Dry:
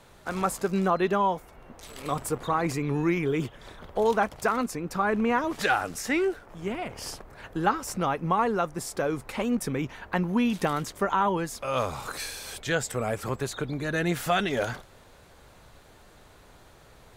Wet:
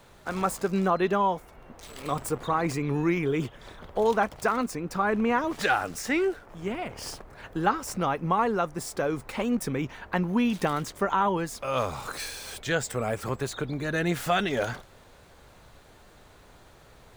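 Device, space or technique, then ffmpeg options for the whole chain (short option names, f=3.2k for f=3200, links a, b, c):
crushed at another speed: -af "asetrate=22050,aresample=44100,acrusher=samples=3:mix=1:aa=0.000001,asetrate=88200,aresample=44100"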